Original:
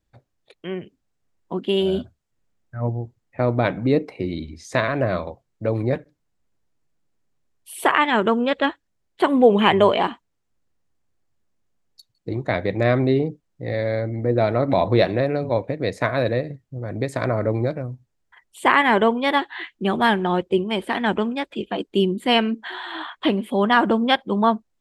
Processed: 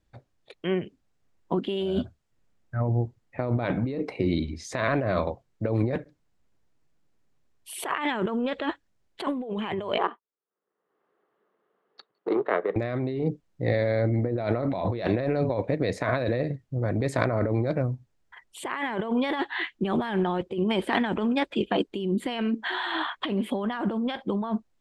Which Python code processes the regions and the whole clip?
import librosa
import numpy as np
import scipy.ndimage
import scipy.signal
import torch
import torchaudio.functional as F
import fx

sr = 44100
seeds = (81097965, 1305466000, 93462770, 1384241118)

y = fx.chain(x, sr, fx.power_curve(exponent=1.4),
    fx.cabinet(low_hz=240.0, low_slope=24, high_hz=2700.0, hz=(260.0, 430.0, 1200.0, 2400.0), db=(-10, 10, 7, -9)),
    fx.band_squash(depth_pct=100), at=(9.98, 12.76))
y = fx.over_compress(y, sr, threshold_db=-25.0, ratio=-1.0)
y = fx.high_shelf(y, sr, hz=9800.0, db=-10.0)
y = y * 10.0 ** (-1.5 / 20.0)